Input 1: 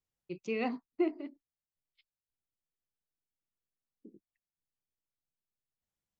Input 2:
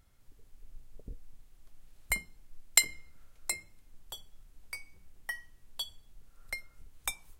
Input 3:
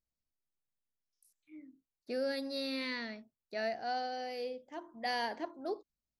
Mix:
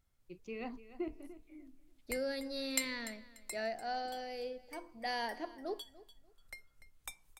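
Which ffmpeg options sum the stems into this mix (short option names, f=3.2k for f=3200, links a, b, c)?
-filter_complex "[0:a]volume=-9.5dB,asplit=2[a][b];[b]volume=-15dB[c];[1:a]volume=-11.5dB,asplit=2[d][e];[e]volume=-14.5dB[f];[2:a]volume=-2.5dB,asplit=2[g][h];[h]volume=-19.5dB[i];[c][f][i]amix=inputs=3:normalize=0,aecho=0:1:293|586|879|1172:1|0.24|0.0576|0.0138[j];[a][d][g][j]amix=inputs=4:normalize=0"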